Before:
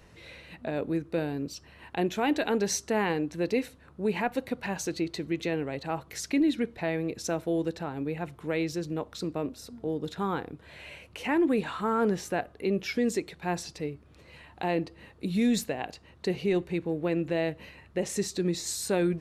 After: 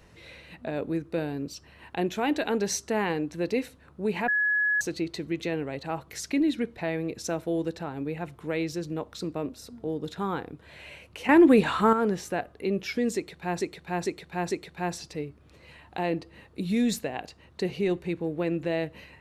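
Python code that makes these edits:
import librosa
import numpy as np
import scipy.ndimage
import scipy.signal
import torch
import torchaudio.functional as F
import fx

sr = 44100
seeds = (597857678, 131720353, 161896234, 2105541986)

y = fx.edit(x, sr, fx.bleep(start_s=4.28, length_s=0.53, hz=1690.0, db=-21.5),
    fx.clip_gain(start_s=11.29, length_s=0.64, db=8.0),
    fx.repeat(start_s=13.16, length_s=0.45, count=4), tone=tone)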